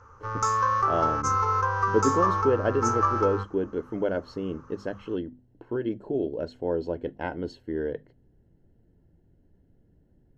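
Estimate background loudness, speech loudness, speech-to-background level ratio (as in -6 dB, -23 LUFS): -25.5 LUFS, -30.0 LUFS, -4.5 dB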